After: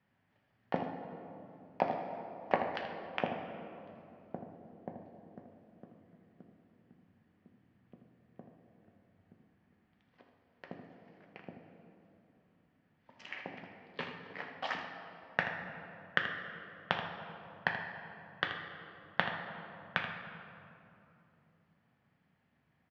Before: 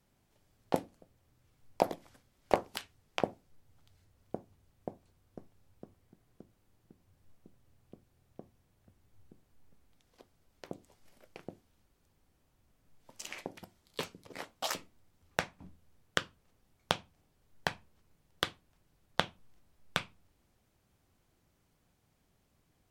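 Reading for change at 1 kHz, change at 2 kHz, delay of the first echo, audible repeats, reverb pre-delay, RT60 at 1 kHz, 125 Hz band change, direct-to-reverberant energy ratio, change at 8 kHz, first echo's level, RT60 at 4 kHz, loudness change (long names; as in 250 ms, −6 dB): +1.0 dB, +4.5 dB, 80 ms, 1, 5 ms, 2.6 s, −0.5 dB, 2.0 dB, below −20 dB, −10.5 dB, 1.5 s, −1.5 dB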